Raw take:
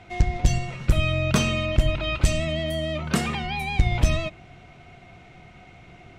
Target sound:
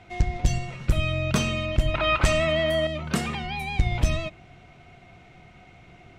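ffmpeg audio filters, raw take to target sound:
-filter_complex "[0:a]asettb=1/sr,asplit=3[s0][s1][s2];[s0]atrim=end=1.944[s3];[s1]atrim=start=1.94:end=2.87,asetpts=PTS-STARTPTS,afade=t=in:d=0.004:c=qsin,afade=t=out:st=0.926:d=0.004:c=qsin,equalizer=f=1200:t=o:w=2.3:g=13.5[s4];[s2]atrim=start=2.866[s5];[s3][s4]acrossfade=d=0.004:c1=hsin:c2=qsin[s6];[s6][s5]acrossfade=d=0.004:c1=qsin:c2=hsin,volume=0.75"

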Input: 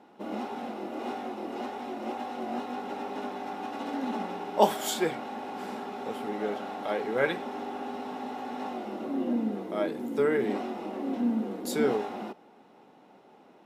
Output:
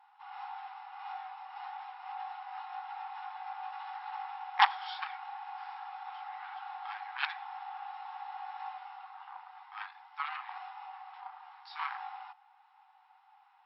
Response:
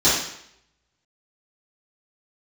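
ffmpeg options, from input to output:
-af "highshelf=f=2700:g=-10.5,aeval=exprs='0.473*(cos(1*acos(clip(val(0)/0.473,-1,1)))-cos(1*PI/2))+0.015*(cos(3*acos(clip(val(0)/0.473,-1,1)))-cos(3*PI/2))+0.0168*(cos(5*acos(clip(val(0)/0.473,-1,1)))-cos(5*PI/2))+0.0119*(cos(6*acos(clip(val(0)/0.473,-1,1)))-cos(6*PI/2))+0.119*(cos(7*acos(clip(val(0)/0.473,-1,1)))-cos(7*PI/2))':c=same,afftfilt=real='re*between(b*sr/4096,740,5500)':imag='im*between(b*sr/4096,740,5500)':win_size=4096:overlap=0.75,volume=1.26"

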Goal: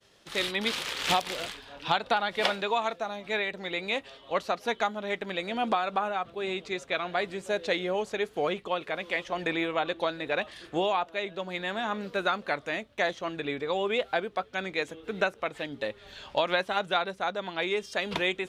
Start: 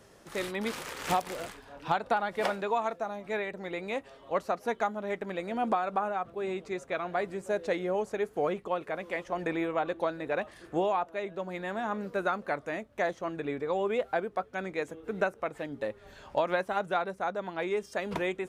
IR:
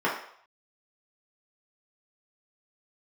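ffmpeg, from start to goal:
-af "equalizer=f=3500:t=o:w=1.4:g=13.5,agate=range=0.0224:threshold=0.00447:ratio=3:detection=peak"

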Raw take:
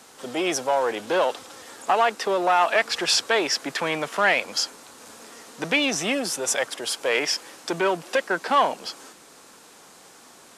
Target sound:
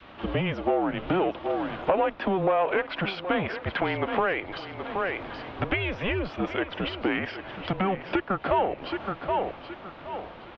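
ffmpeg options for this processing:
-af "aecho=1:1:772|1544|2316:0.2|0.0559|0.0156,acompressor=threshold=0.0282:ratio=6,adynamicequalizer=threshold=0.00398:dfrequency=820:dqfactor=1.2:tfrequency=820:tqfactor=1.2:attack=5:release=100:ratio=0.375:range=3:mode=boostabove:tftype=bell,highpass=f=200:t=q:w=0.5412,highpass=f=200:t=q:w=1.307,lowpass=f=3400:t=q:w=0.5176,lowpass=f=3400:t=q:w=0.7071,lowpass=f=3400:t=q:w=1.932,afreqshift=-190,volume=1.78"

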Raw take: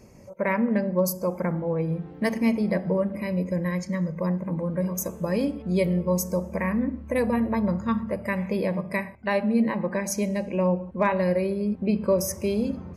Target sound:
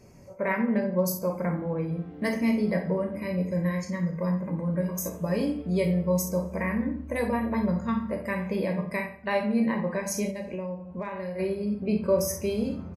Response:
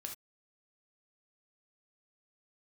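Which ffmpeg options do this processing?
-filter_complex "[0:a]asplit=2[s0][s1];[s1]adelay=88,lowpass=f=3900:p=1,volume=0.237,asplit=2[s2][s3];[s3]adelay=88,lowpass=f=3900:p=1,volume=0.29,asplit=2[s4][s5];[s5]adelay=88,lowpass=f=3900:p=1,volume=0.29[s6];[s0][s2][s4][s6]amix=inputs=4:normalize=0[s7];[1:a]atrim=start_sample=2205,atrim=end_sample=3528,asetrate=52920,aresample=44100[s8];[s7][s8]afir=irnorm=-1:irlink=0,asplit=3[s9][s10][s11];[s9]afade=t=out:st=10.3:d=0.02[s12];[s10]acompressor=threshold=0.02:ratio=10,afade=t=in:st=10.3:d=0.02,afade=t=out:st=11.38:d=0.02[s13];[s11]afade=t=in:st=11.38:d=0.02[s14];[s12][s13][s14]amix=inputs=3:normalize=0,volume=1.41"

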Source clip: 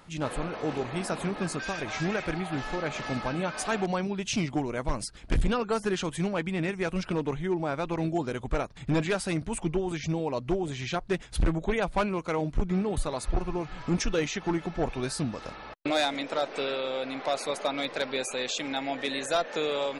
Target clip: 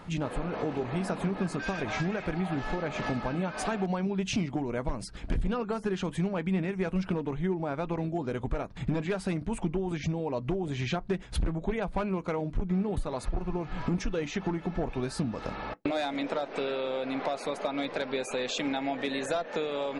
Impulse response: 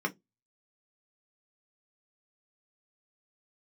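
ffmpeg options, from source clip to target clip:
-filter_complex "[0:a]highshelf=f=3300:g=-11.5,acompressor=threshold=0.0158:ratio=6,asplit=2[s0][s1];[1:a]atrim=start_sample=2205[s2];[s1][s2]afir=irnorm=-1:irlink=0,volume=0.0944[s3];[s0][s3]amix=inputs=2:normalize=0,volume=2.66"

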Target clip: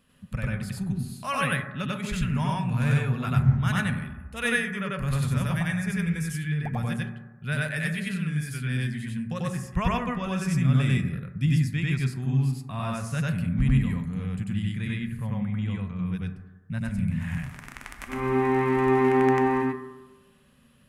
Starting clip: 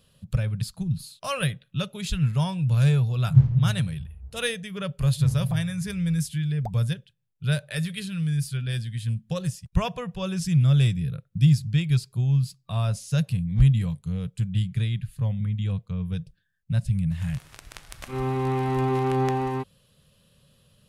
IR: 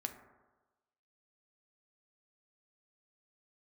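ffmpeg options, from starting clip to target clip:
-filter_complex "[0:a]equalizer=f=125:t=o:w=1:g=-6,equalizer=f=250:t=o:w=1:g=11,equalizer=f=500:t=o:w=1:g=-4,equalizer=f=1000:t=o:w=1:g=5,equalizer=f=2000:t=o:w=1:g=10,equalizer=f=4000:t=o:w=1:g=-7,asplit=2[s0][s1];[1:a]atrim=start_sample=2205,adelay=94[s2];[s1][s2]afir=irnorm=-1:irlink=0,volume=1.5[s3];[s0][s3]amix=inputs=2:normalize=0,volume=0.531"

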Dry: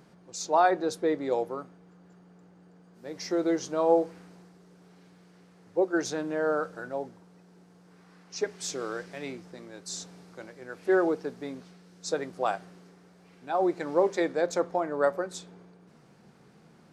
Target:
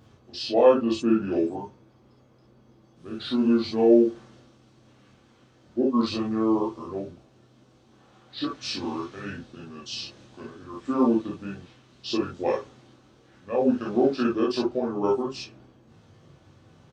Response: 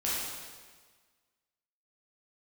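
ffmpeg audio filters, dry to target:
-filter_complex "[0:a]asetrate=31183,aresample=44100,atempo=1.41421,bandreject=f=950:w=14[s0];[1:a]atrim=start_sample=2205,atrim=end_sample=3087[s1];[s0][s1]afir=irnorm=-1:irlink=0"

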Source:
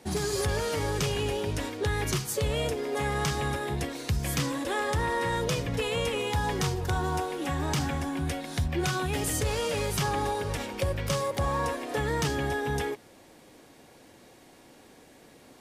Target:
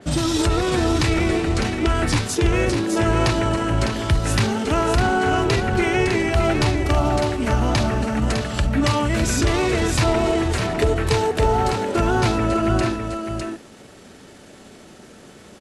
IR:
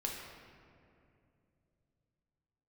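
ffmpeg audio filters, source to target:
-filter_complex "[0:a]acontrast=31,asetrate=35002,aresample=44100,atempo=1.25992,asplit=2[s0][s1];[s1]aecho=0:1:605:0.473[s2];[s0][s2]amix=inputs=2:normalize=0,adynamicequalizer=threshold=0.0112:dfrequency=3800:dqfactor=0.7:tfrequency=3800:tqfactor=0.7:attack=5:release=100:ratio=0.375:range=2:mode=cutabove:tftype=highshelf,volume=1.58"

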